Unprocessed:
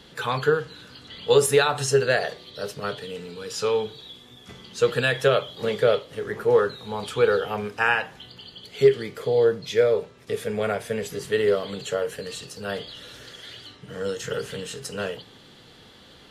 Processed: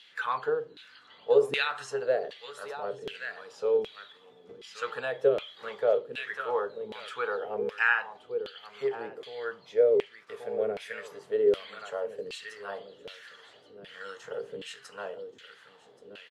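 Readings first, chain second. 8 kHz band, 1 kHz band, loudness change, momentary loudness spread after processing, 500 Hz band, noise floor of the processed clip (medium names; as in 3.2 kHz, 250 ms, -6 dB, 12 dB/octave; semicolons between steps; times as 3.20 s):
under -15 dB, -6.5 dB, -6.5 dB, 19 LU, -6.0 dB, -57 dBFS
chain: delay 1128 ms -10.5 dB; LFO band-pass saw down 1.3 Hz 330–2800 Hz; treble shelf 4.7 kHz +10 dB; trim -1 dB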